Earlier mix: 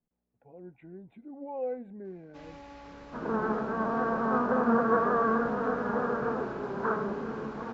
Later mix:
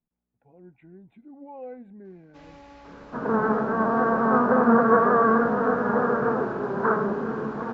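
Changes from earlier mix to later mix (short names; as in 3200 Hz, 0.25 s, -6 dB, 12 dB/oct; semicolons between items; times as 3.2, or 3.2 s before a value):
speech: add bell 520 Hz -6 dB 0.96 oct; second sound +7.0 dB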